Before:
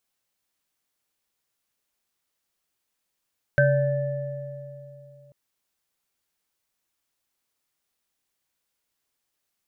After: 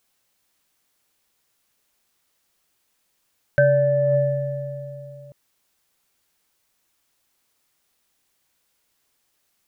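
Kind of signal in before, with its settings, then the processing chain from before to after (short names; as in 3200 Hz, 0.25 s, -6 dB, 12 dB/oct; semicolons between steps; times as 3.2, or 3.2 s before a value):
sine partials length 1.74 s, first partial 137 Hz, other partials 581/1550/1750 Hz, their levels 1/1/-17 dB, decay 3.05 s, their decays 2.96/0.43/1.89 s, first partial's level -18.5 dB
dynamic EQ 570 Hz, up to +5 dB, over -34 dBFS, Q 2; in parallel at 0 dB: negative-ratio compressor -27 dBFS, ratio -0.5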